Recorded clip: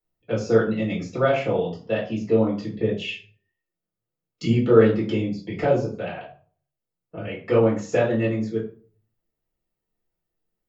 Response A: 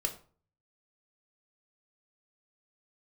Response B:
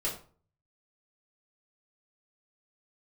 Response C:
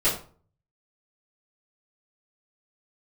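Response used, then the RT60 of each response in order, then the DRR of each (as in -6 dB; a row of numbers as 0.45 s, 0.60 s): B; 0.45 s, 0.40 s, 0.40 s; 3.5 dB, -6.0 dB, -12.5 dB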